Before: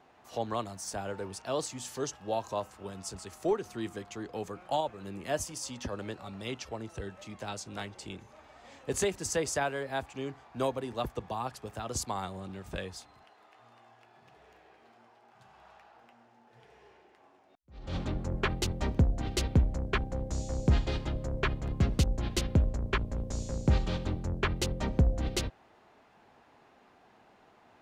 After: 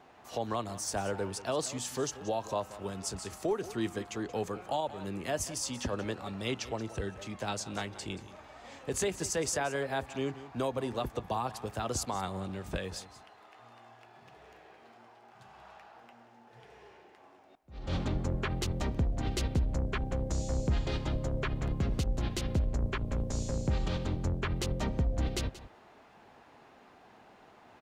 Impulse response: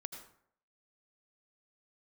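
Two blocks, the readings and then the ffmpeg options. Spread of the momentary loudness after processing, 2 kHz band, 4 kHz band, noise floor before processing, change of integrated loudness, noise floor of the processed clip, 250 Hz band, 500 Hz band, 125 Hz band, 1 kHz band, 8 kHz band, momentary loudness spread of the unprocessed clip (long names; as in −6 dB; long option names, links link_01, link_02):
8 LU, −1.5 dB, −0.5 dB, −62 dBFS, −1.0 dB, −58 dBFS, −0.5 dB, 0.0 dB, −1.5 dB, −0.5 dB, +1.0 dB, 13 LU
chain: -filter_complex "[0:a]alimiter=level_in=2dB:limit=-24dB:level=0:latency=1:release=130,volume=-2dB,asplit=2[link_01][link_02];[link_02]aecho=0:1:180:0.168[link_03];[link_01][link_03]amix=inputs=2:normalize=0,volume=3.5dB"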